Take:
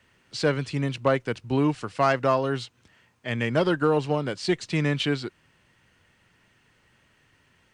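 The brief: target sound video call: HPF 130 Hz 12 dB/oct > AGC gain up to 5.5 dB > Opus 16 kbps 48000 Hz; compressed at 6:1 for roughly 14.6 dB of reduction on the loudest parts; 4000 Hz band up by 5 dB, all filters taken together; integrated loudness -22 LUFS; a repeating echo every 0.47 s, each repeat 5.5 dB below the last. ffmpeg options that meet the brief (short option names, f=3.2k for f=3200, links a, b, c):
-af "equalizer=f=4k:t=o:g=6.5,acompressor=threshold=-33dB:ratio=6,highpass=130,aecho=1:1:470|940|1410|1880|2350|2820|3290:0.531|0.281|0.149|0.079|0.0419|0.0222|0.0118,dynaudnorm=m=5.5dB,volume=15dB" -ar 48000 -c:a libopus -b:a 16k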